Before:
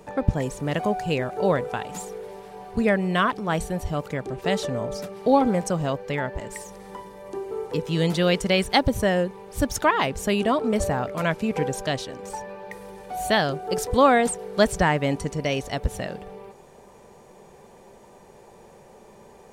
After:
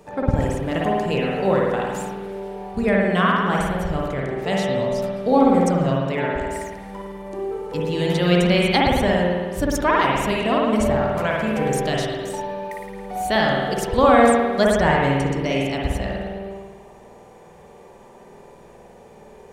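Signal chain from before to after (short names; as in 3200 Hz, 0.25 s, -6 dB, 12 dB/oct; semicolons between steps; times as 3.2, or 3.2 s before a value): 11.47–12.86 high shelf 6700 Hz +7.5 dB; spring tank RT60 1.4 s, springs 51 ms, chirp 65 ms, DRR -3 dB; gain -1 dB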